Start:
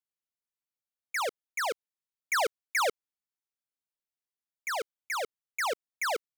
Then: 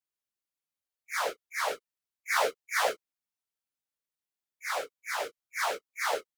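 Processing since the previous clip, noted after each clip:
random phases in long frames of 100 ms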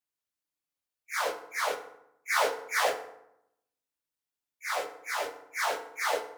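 feedback delay network reverb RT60 0.8 s, low-frequency decay 1.25×, high-frequency decay 0.6×, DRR 6.5 dB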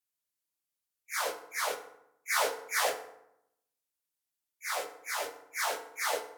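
parametric band 13,000 Hz +8 dB 1.9 octaves
level −3.5 dB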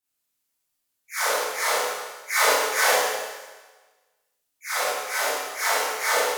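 four-comb reverb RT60 1.3 s, combs from 25 ms, DRR −10 dB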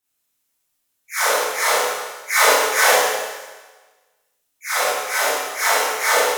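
notch filter 4,600 Hz, Q 17
level +5.5 dB

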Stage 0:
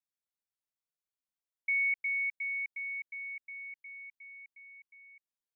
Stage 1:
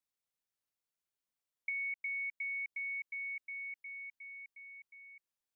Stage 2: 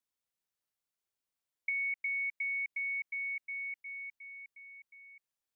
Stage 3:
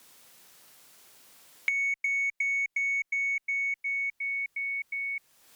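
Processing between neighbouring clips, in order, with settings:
downward compressor, threshold −38 dBFS, peak gain reduction 9.5 dB; level +1 dB
dynamic equaliser 2,100 Hz, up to +4 dB, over −48 dBFS
harmonic generator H 2 −42 dB, 7 −29 dB, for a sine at −24 dBFS; multiband upward and downward compressor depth 100%; level +7 dB

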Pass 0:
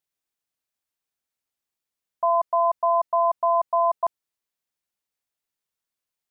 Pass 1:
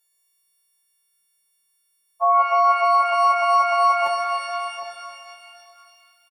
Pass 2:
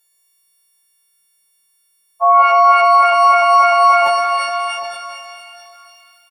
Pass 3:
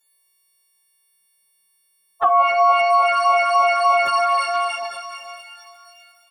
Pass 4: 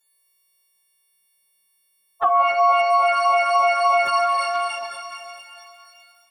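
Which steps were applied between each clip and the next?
every partial snapped to a pitch grid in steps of 4 semitones; slap from a distant wall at 130 metres, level −12 dB; reverb with rising layers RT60 2.6 s, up +12 semitones, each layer −8 dB, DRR 4 dB; level +4 dB
transient designer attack −2 dB, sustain +6 dB; level +7 dB
flanger swept by the level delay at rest 9.1 ms, full sweep at −6.5 dBFS
convolution reverb RT60 1.9 s, pre-delay 115 ms, DRR 11.5 dB; level −2 dB

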